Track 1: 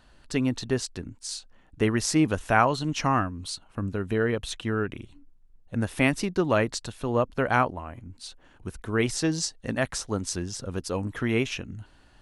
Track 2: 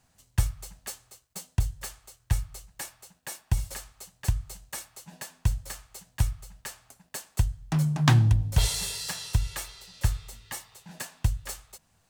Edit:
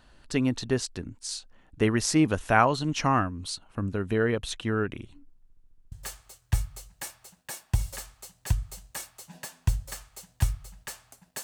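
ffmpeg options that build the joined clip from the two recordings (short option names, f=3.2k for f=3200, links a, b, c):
-filter_complex "[0:a]apad=whole_dur=11.43,atrim=end=11.43,asplit=7[a][b][c][d][e][f][g];[a]atrim=end=5.502[h];[b]atrim=start=5.428:end=5.502[i];[c]atrim=start=5.428:end=5.502[j];[d]atrim=start=5.428:end=5.502[k];[e]atrim=start=5.428:end=5.502[l];[f]atrim=start=5.428:end=5.502[m];[g]atrim=start=5.428:end=5.502[n];[1:a]atrim=start=1.698:end=7.21[o];[h][i]acrossfade=d=0.004:c1=hsin:c2=hsin[p];[p][j]acrossfade=d=0.004:c1=hsin:c2=hsin[q];[q][k]acrossfade=d=0.004:c1=hsin:c2=hsin[r];[r][l]acrossfade=d=0.004:c1=hsin:c2=hsin[s];[s][m]acrossfade=d=0.004:c1=hsin:c2=hsin[t];[t][n]acrossfade=d=0.004:c1=hsin:c2=hsin[u];[u][o]acrossfade=d=0.004:c1=hsin:c2=hsin"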